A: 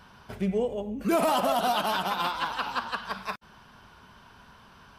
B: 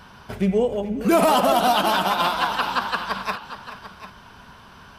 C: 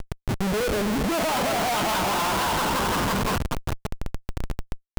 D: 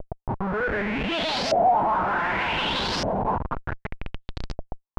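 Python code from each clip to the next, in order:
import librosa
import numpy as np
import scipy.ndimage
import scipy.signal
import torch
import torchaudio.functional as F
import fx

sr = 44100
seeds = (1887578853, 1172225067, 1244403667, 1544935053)

y1 = fx.echo_multitap(x, sr, ms=(427, 744), db=(-14.5, -14.0))
y1 = y1 * 10.0 ** (7.0 / 20.0)
y2 = fx.dmg_crackle(y1, sr, seeds[0], per_s=65.0, level_db=-29.0)
y2 = fx.schmitt(y2, sr, flips_db=-28.5)
y2 = y2 * 10.0 ** (-1.0 / 20.0)
y3 = fx.dynamic_eq(y2, sr, hz=1200.0, q=4.7, threshold_db=-45.0, ratio=4.0, max_db=-6)
y3 = fx.filter_lfo_lowpass(y3, sr, shape='saw_up', hz=0.66, low_hz=600.0, high_hz=5300.0, q=4.6)
y3 = y3 * 10.0 ** (-3.5 / 20.0)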